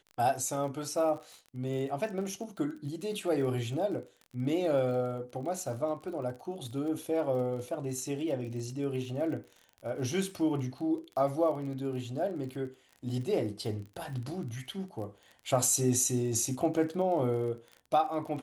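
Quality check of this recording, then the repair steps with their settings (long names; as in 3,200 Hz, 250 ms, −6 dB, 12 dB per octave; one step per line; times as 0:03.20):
surface crackle 31 per second −40 dBFS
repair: click removal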